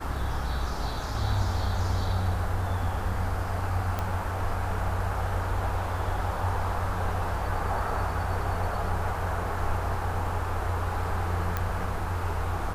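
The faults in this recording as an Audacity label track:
3.990000	3.990000	click −16 dBFS
11.570000	11.570000	click −14 dBFS

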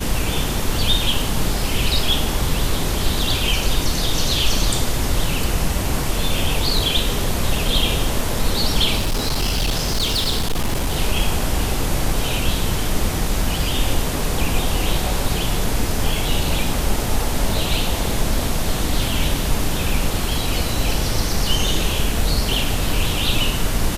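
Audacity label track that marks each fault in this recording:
8.970000	10.930000	clipping −15.5 dBFS

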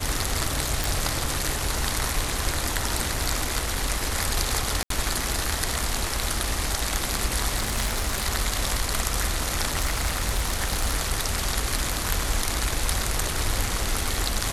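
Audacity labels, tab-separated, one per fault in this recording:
0.840000	0.840000	click
4.830000	4.900000	drop-out 73 ms
7.550000	8.240000	clipping −19.5 dBFS
9.750000	10.960000	clipping −18 dBFS

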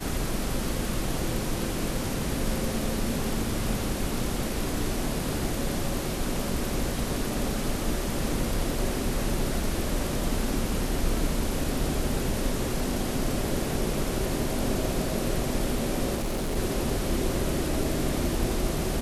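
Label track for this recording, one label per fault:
16.150000	16.570000	clipping −25 dBFS

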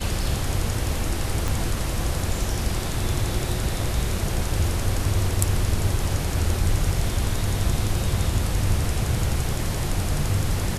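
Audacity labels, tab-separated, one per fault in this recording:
1.480000	1.480000	click

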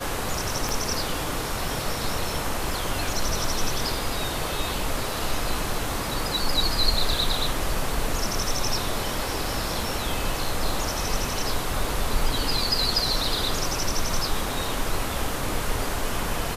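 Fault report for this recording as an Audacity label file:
0.690000	0.690000	click

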